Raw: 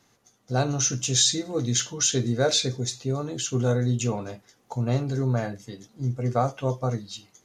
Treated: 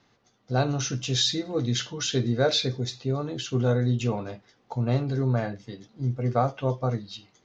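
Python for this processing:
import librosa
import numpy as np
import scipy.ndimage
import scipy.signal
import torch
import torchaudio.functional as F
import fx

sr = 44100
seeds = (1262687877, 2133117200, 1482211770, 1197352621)

y = scipy.signal.sosfilt(scipy.signal.butter(4, 4900.0, 'lowpass', fs=sr, output='sos'), x)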